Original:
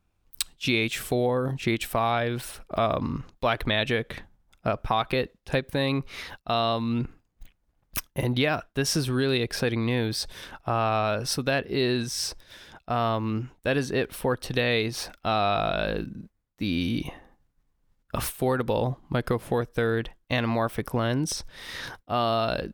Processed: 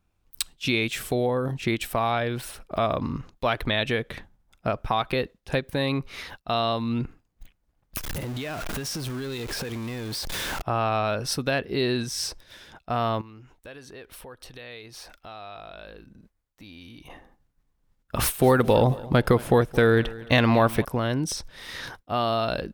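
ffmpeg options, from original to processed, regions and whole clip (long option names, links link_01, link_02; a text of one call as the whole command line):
ffmpeg -i in.wav -filter_complex "[0:a]asettb=1/sr,asplit=3[link_01][link_02][link_03];[link_01]atrim=end=7.974[link_04];[link_02]atrim=start=7.97:end=10.62,asetpts=PTS-STARTPTS,afade=type=in:duration=0.004:curve=qsin,afade=type=out:start_time=2.646:duration=0.004:curve=qsin,aeval=exprs='val(0)+0.5*0.0631*sgn(val(0))':channel_layout=same,acompressor=threshold=-29dB:ratio=8:attack=3.2:release=140:knee=1:detection=peak[link_05];[link_03]atrim=start=10.616[link_06];[link_04][link_05]acrossfade=duration=0.004:curve1=hsin:curve2=qsin[link_07];[link_07][link_06]acrossfade=duration=0.004:curve1=qsin:curve2=hsin,asettb=1/sr,asplit=3[link_08][link_09][link_10];[link_08]atrim=end=13.214[link_11];[link_09]atrim=start=13.21:end=17.1,asetpts=PTS-STARTPTS,afade=type=in:duration=0.004:curve=qsin,afade=type=out:start_time=3.886:duration=0.004:curve=qsin,acompressor=threshold=-42dB:ratio=3:attack=3.2:release=140:knee=1:detection=peak,equalizer=frequency=180:width_type=o:width=1.8:gain=-7.5[link_12];[link_10]atrim=start=17.096[link_13];[link_11][link_12]acrossfade=duration=0.004:curve1=hsin:curve2=qsin[link_14];[link_14][link_13]acrossfade=duration=0.004:curve1=qsin:curve2=hsin,asettb=1/sr,asplit=3[link_15][link_16][link_17];[link_15]atrim=end=18.194[link_18];[link_16]atrim=start=18.19:end=20.85,asetpts=PTS-STARTPTS,afade=type=in:duration=0.004:curve=qsin,afade=type=out:start_time=2.656:duration=0.004:curve=qsin,acontrast=69,aecho=1:1:219|438|657:0.112|0.046|0.0189,atrim=end_sample=117306[link_19];[link_17]atrim=start=20.846[link_20];[link_18][link_19]acrossfade=duration=0.004:curve1=hsin:curve2=qsin[link_21];[link_21][link_20]acrossfade=duration=0.004:curve1=qsin:curve2=hsin" out.wav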